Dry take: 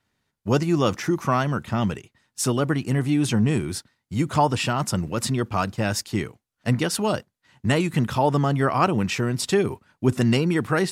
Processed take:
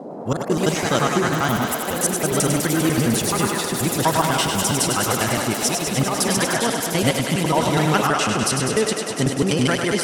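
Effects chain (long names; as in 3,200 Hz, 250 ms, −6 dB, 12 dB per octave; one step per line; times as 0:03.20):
slices reordered back to front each 90 ms, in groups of 3
low-pass filter 10,000 Hz 24 dB per octave
high-shelf EQ 4,500 Hz +10 dB
reversed playback
upward compression, threshold −27 dBFS
reversed playback
noise in a band 140–650 Hz −35 dBFS
on a send: feedback echo with a high-pass in the loop 109 ms, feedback 85%, high-pass 280 Hz, level −5.5 dB
on the sum: wrong playback speed 44.1 kHz file played as 48 kHz
delay with pitch and tempo change per echo 106 ms, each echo +4 semitones, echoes 3, each echo −6 dB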